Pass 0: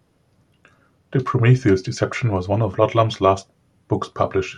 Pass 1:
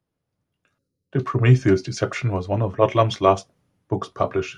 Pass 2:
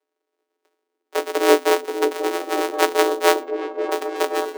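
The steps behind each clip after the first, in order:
gain on a spectral selection 0:00.78–0:01.11, 560–3,800 Hz −20 dB; multiband upward and downward expander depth 40%; level −2 dB
samples sorted by size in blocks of 256 samples; echo whose low-pass opens from repeat to repeat 532 ms, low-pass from 400 Hz, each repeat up 1 octave, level −6 dB; frequency shifter +260 Hz; level −1 dB

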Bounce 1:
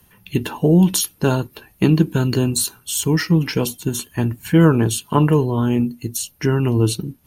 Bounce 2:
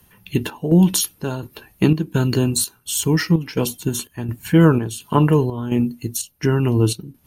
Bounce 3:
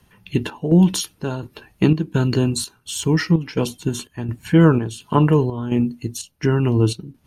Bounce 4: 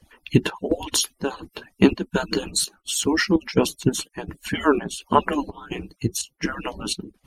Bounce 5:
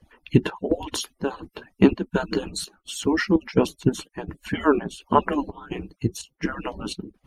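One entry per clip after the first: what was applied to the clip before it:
square-wave tremolo 1.4 Hz, depth 60%, duty 70%
high-frequency loss of the air 55 metres
harmonic-percussive split with one part muted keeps percussive; level +3.5 dB
high-shelf EQ 3,200 Hz −11.5 dB

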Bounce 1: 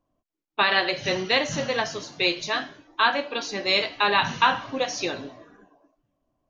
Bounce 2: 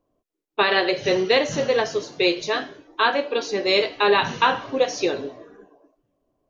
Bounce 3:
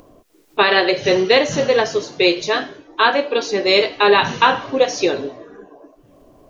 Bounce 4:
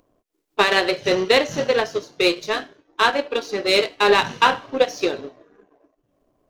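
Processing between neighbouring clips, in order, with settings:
parametric band 430 Hz +11.5 dB 0.73 octaves
upward compression, threshold −37 dBFS; level +5 dB
power curve on the samples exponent 1.4

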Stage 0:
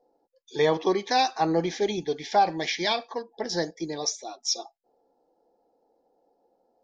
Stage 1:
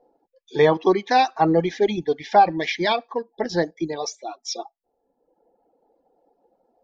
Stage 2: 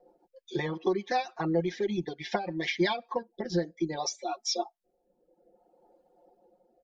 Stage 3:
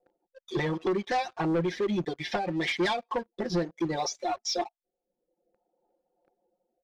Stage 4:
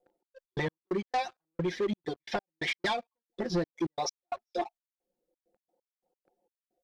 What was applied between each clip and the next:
reverb reduction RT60 1.2 s; bass and treble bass +2 dB, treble −13 dB; level +6.5 dB
downward compressor 4 to 1, threshold −28 dBFS, peak gain reduction 15 dB; rotating-speaker cabinet horn 7.5 Hz, later 0.6 Hz, at 0:02.42; comb filter 5.6 ms, depth 93%
leveller curve on the samples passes 3; high-frequency loss of the air 53 metres; level −6 dB
gate pattern "xx.x.x..x.xx..x" 132 BPM −60 dB; level −1.5 dB

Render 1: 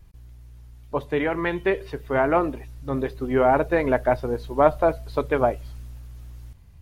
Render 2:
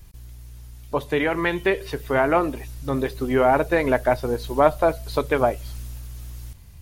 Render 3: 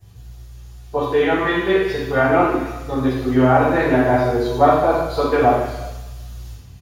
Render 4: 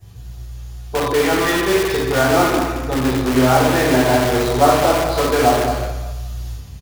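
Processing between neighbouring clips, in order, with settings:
high-shelf EQ 3,300 Hz +11 dB; in parallel at −1 dB: downward compressor, threshold −28 dBFS, peak gain reduction 16.5 dB; on the sum: level −1.5 dB
ambience of single reflections 11 ms −3.5 dB, 55 ms −7.5 dB; convolution reverb RT60 1.1 s, pre-delay 3 ms, DRR −11.5 dB; level −15 dB
in parallel at −4 dB: wrap-around overflow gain 17 dB; on the sum: log-companded quantiser 8 bits; single-tap delay 218 ms −9.5 dB

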